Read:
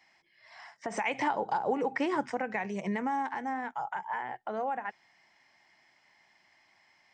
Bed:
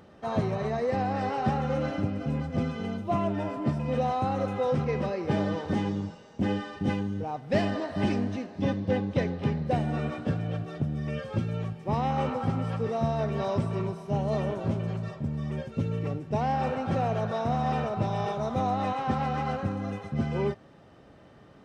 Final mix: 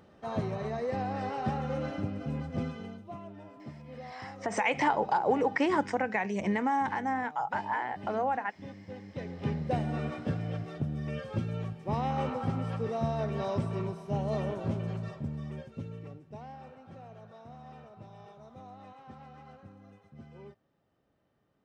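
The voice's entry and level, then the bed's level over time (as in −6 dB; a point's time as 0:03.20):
3.60 s, +3.0 dB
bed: 0:02.67 −5 dB
0:03.20 −17.5 dB
0:09.02 −17.5 dB
0:09.51 −3.5 dB
0:15.17 −3.5 dB
0:16.74 −21.5 dB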